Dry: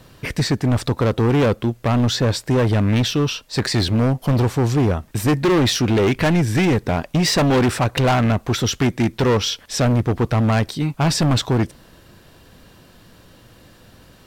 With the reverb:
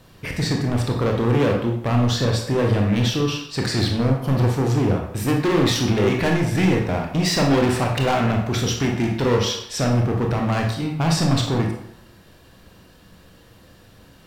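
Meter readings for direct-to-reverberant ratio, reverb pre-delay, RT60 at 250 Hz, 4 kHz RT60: 0.5 dB, 22 ms, 0.70 s, 0.55 s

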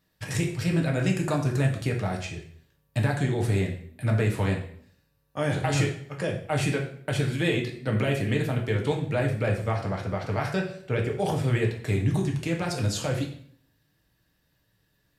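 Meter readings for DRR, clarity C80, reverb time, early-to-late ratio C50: 0.0 dB, 11.0 dB, 0.60 s, 7.5 dB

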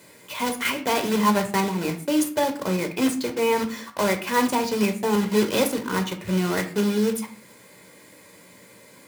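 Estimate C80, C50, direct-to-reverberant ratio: 16.5 dB, 11.5 dB, 6.0 dB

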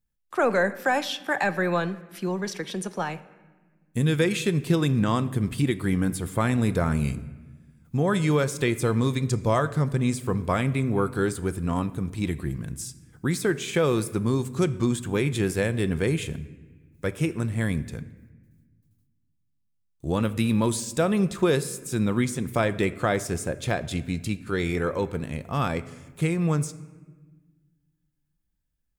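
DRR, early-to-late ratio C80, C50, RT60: 12.0 dB, 17.5 dB, 16.5 dB, 1.4 s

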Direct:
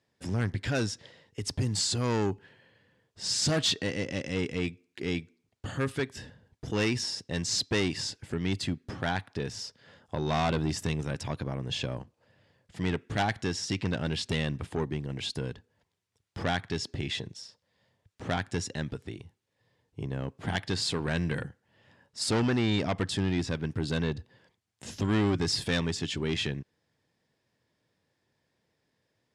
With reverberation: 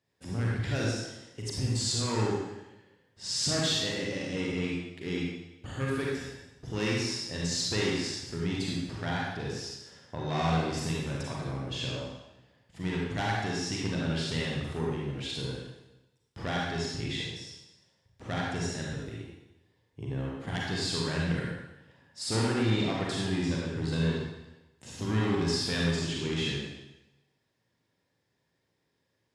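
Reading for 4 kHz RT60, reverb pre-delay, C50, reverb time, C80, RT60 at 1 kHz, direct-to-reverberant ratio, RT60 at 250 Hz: 0.95 s, 35 ms, -1.5 dB, 0.95 s, 1.5 dB, 0.95 s, -4.0 dB, 1.0 s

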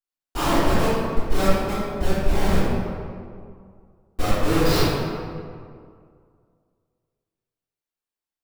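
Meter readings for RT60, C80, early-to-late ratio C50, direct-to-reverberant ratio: 2.2 s, -1.5 dB, -5.0 dB, -19.0 dB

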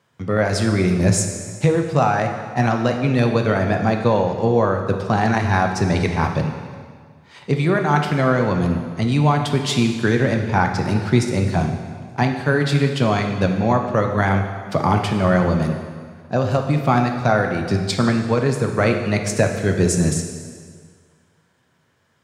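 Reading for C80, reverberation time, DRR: 7.5 dB, 1.8 s, 4.0 dB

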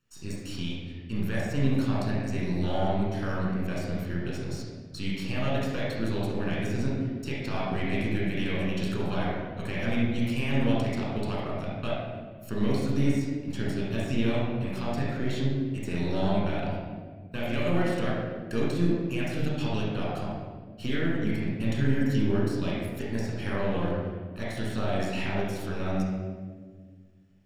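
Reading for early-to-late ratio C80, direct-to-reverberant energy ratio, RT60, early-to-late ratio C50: 1.5 dB, -5.5 dB, 1.7 s, -1.5 dB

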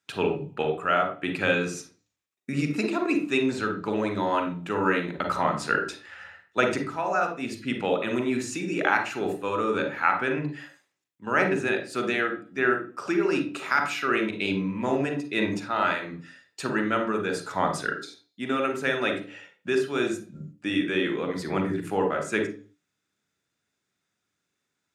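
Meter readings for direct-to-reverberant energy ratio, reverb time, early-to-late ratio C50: 5.0 dB, 0.40 s, 8.0 dB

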